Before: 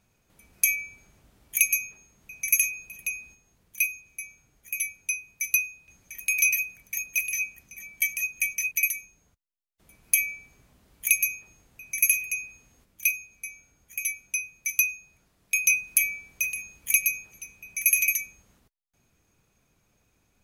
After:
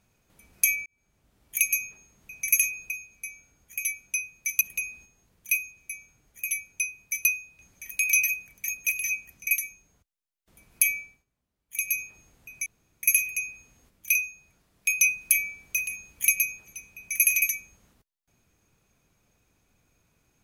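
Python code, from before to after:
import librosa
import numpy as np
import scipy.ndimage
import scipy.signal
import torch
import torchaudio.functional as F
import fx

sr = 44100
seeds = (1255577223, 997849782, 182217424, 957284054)

y = fx.edit(x, sr, fx.fade_in_span(start_s=0.86, length_s=0.98),
    fx.cut(start_s=7.76, length_s=1.03),
    fx.fade_down_up(start_s=10.27, length_s=1.04, db=-22.5, fade_s=0.3),
    fx.insert_room_tone(at_s=11.98, length_s=0.37),
    fx.move(start_s=13.1, length_s=1.71, to_s=2.9), tone=tone)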